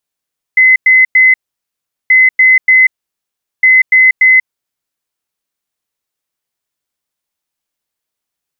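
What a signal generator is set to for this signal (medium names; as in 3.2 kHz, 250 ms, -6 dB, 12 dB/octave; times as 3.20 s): beep pattern sine 2.04 kHz, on 0.19 s, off 0.10 s, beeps 3, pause 0.76 s, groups 3, -3 dBFS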